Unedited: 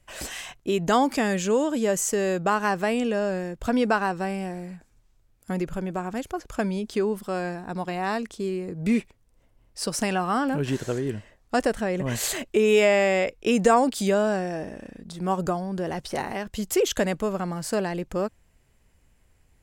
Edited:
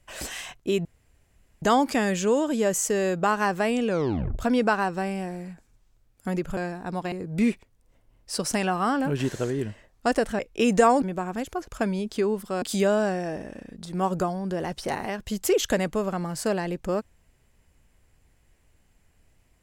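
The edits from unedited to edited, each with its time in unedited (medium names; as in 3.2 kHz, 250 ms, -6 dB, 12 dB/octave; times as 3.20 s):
0.85 s: insert room tone 0.77 s
3.11 s: tape stop 0.51 s
5.80–7.40 s: move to 13.89 s
7.95–8.60 s: delete
11.87–13.26 s: delete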